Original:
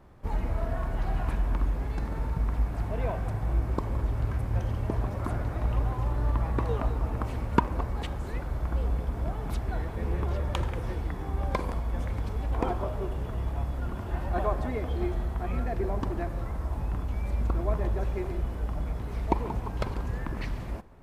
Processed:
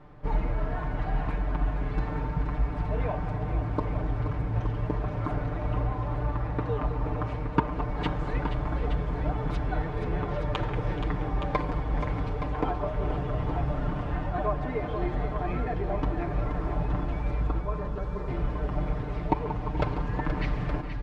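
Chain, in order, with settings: LPF 3600 Hz 12 dB/oct; comb 6.7 ms, depth 80%; vocal rider within 4 dB 0.5 s; 17.59–18.28 fixed phaser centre 470 Hz, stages 8; tapped delay 0.428/0.476/0.87 s -18/-9/-9 dB

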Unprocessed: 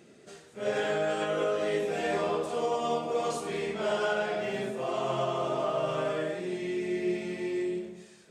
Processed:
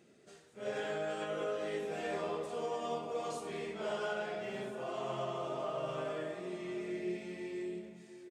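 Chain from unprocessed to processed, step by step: outdoor echo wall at 120 m, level -12 dB; gain -8.5 dB

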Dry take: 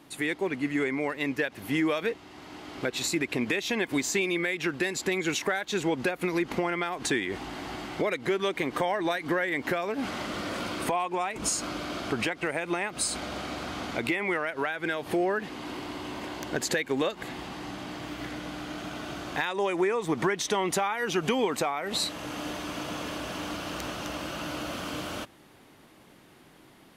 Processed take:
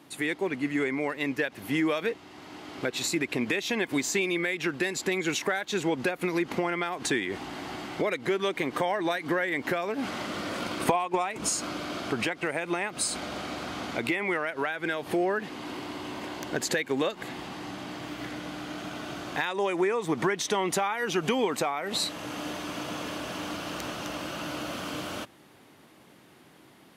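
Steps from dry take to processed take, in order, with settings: HPF 85 Hz; 10.61–11.29 transient shaper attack +9 dB, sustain -3 dB

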